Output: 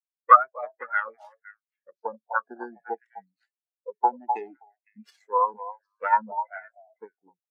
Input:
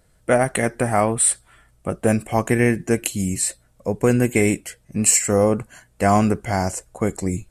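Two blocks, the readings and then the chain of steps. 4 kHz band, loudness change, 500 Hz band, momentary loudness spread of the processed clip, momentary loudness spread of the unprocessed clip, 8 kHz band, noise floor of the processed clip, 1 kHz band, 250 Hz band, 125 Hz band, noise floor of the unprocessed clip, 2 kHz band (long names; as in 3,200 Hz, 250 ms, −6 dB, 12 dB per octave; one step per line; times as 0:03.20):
below −25 dB, −4.5 dB, −14.5 dB, 23 LU, 11 LU, below −40 dB, below −85 dBFS, +2.5 dB, −27.5 dB, below −40 dB, −59 dBFS, −6.0 dB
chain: phase distortion by the signal itself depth 0.82 ms
transient designer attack +6 dB, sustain +10 dB
meter weighting curve A
on a send: echo through a band-pass that steps 254 ms, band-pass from 720 Hz, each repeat 1.4 octaves, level −1 dB
on the sum: healed spectral selection 0:02.04–0:02.80, 1,700–4,500 Hz both
low-shelf EQ 100 Hz −7 dB
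every bin expanded away from the loudest bin 4 to 1
level −3 dB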